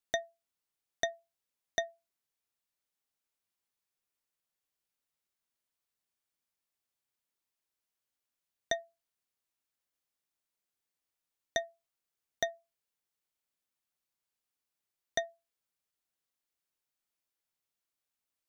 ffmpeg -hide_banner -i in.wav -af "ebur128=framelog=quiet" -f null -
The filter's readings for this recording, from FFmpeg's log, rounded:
Integrated loudness:
  I:         -38.0 LUFS
  Threshold: -48.7 LUFS
Loudness range:
  LRA:         3.0 LU
  Threshold: -65.2 LUFS
  LRA low:   -46.4 LUFS
  LRA high:  -43.4 LUFS